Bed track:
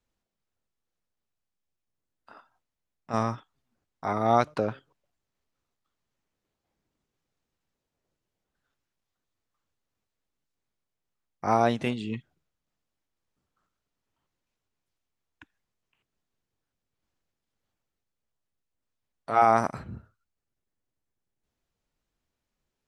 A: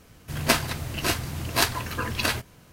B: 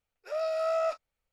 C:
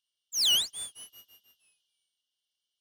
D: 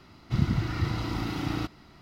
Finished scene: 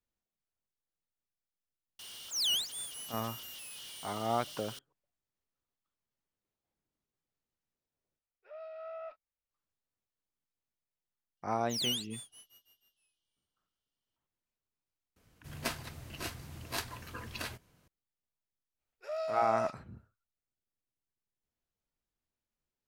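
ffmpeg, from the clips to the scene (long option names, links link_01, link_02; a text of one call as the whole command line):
ffmpeg -i bed.wav -i cue0.wav -i cue1.wav -i cue2.wav -filter_complex "[3:a]asplit=2[link_01][link_02];[2:a]asplit=2[link_03][link_04];[0:a]volume=-10dB[link_05];[link_01]aeval=exprs='val(0)+0.5*0.0211*sgn(val(0))':channel_layout=same[link_06];[link_03]lowpass=frequency=3200:width=0.5412,lowpass=frequency=3200:width=1.3066[link_07];[link_05]asplit=2[link_08][link_09];[link_08]atrim=end=8.194[link_10];[link_07]atrim=end=1.32,asetpts=PTS-STARTPTS,volume=-15.5dB[link_11];[link_09]atrim=start=9.506[link_12];[link_06]atrim=end=2.8,asetpts=PTS-STARTPTS,volume=-7.5dB,afade=type=in:duration=0.004:curve=hsin,afade=type=out:start_time=2.796:duration=0.004:curve=hsin,adelay=1990[link_13];[link_02]atrim=end=2.8,asetpts=PTS-STARTPTS,volume=-9.5dB,afade=type=in:duration=0.004:curve=hsin,afade=type=out:start_time=2.796:duration=0.004:curve=hsin,adelay=11370[link_14];[1:a]atrim=end=2.72,asetpts=PTS-STARTPTS,volume=-15dB,afade=type=in:duration=0.004:curve=hsin,afade=type=out:start_time=2.716:duration=0.004:curve=hsin,adelay=15160[link_15];[link_04]atrim=end=1.32,asetpts=PTS-STARTPTS,volume=-5.5dB,afade=type=in:duration=0.05,afade=type=out:start_time=1.27:duration=0.05,adelay=18770[link_16];[link_10][link_11]acrossfade=duration=0.004:curve1=hsin:curve2=hsin[link_17];[link_17][link_12]acrossfade=duration=0.004:curve1=hsin:curve2=hsin[link_18];[link_18][link_13][link_14][link_15][link_16]amix=inputs=5:normalize=0" out.wav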